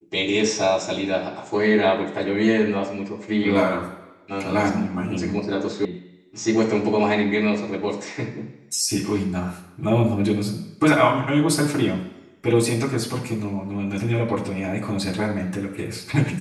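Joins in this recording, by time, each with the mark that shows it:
5.85 s: sound stops dead

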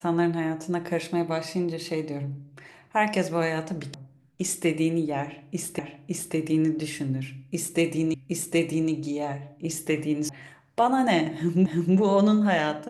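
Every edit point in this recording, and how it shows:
3.94 s: sound stops dead
5.79 s: repeat of the last 0.56 s
8.14 s: repeat of the last 0.77 s
10.29 s: sound stops dead
11.66 s: repeat of the last 0.32 s

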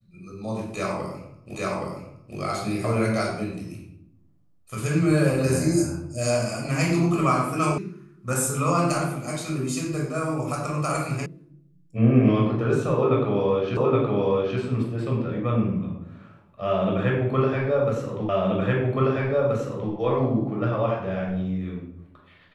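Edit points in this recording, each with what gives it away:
1.55 s: repeat of the last 0.82 s
7.78 s: sound stops dead
11.26 s: sound stops dead
13.77 s: repeat of the last 0.82 s
18.29 s: repeat of the last 1.63 s

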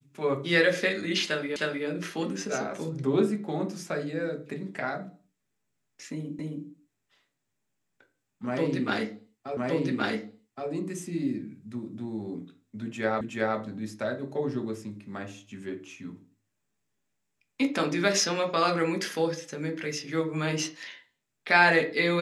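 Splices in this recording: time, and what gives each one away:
1.56 s: repeat of the last 0.31 s
6.39 s: repeat of the last 0.27 s
9.57 s: repeat of the last 1.12 s
13.21 s: repeat of the last 0.37 s

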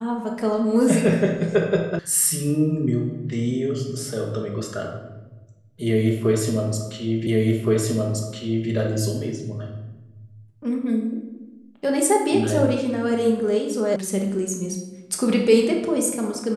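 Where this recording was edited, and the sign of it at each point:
1.99 s: sound stops dead
7.27 s: repeat of the last 1.42 s
13.96 s: sound stops dead

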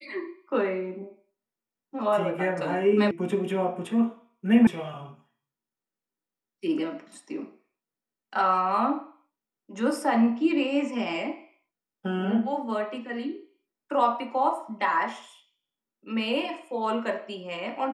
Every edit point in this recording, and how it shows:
3.11 s: sound stops dead
4.67 s: sound stops dead

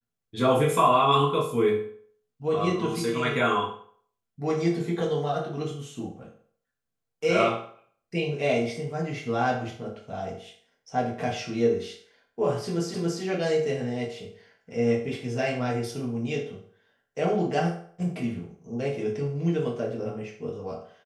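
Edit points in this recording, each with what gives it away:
12.94 s: repeat of the last 0.28 s

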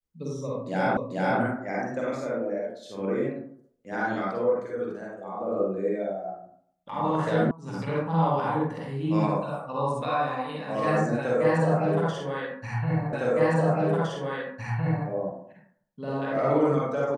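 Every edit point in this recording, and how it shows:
0.97 s: repeat of the last 0.44 s
7.51 s: sound stops dead
13.13 s: repeat of the last 1.96 s

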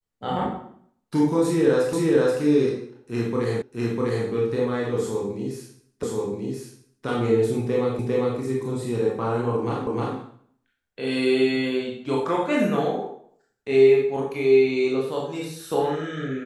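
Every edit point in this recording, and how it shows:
1.93 s: repeat of the last 0.48 s
3.62 s: repeat of the last 0.65 s
6.03 s: repeat of the last 1.03 s
7.99 s: repeat of the last 0.4 s
9.87 s: repeat of the last 0.31 s

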